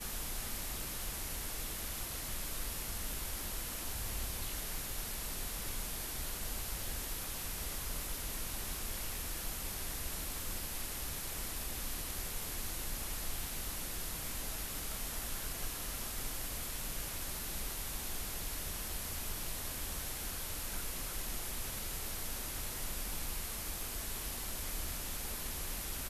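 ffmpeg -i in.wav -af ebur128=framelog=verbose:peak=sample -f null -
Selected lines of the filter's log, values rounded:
Integrated loudness:
  I:         -39.3 LUFS
  Threshold: -49.3 LUFS
Loudness range:
  LRA:         0.1 LU
  Threshold: -59.3 LUFS
  LRA low:   -39.3 LUFS
  LRA high:  -39.2 LUFS
Sample peak:
  Peak:      -25.7 dBFS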